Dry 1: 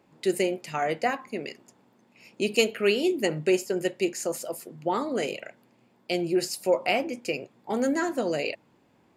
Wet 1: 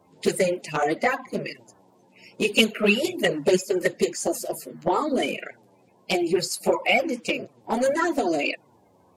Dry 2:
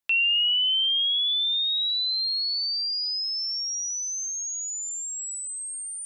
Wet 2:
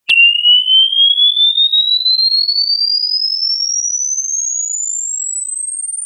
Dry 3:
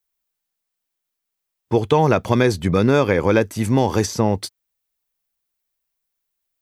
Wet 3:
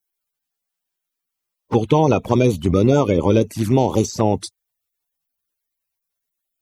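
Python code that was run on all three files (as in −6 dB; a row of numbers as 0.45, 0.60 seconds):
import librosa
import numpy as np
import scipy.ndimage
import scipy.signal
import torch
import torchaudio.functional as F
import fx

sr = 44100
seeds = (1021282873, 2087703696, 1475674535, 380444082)

y = fx.spec_quant(x, sr, step_db=30)
y = fx.env_flanger(y, sr, rest_ms=11.6, full_db=-15.5)
y = librosa.util.normalize(y) * 10.0 ** (-2 / 20.0)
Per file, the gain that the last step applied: +7.5, +17.0, +2.5 decibels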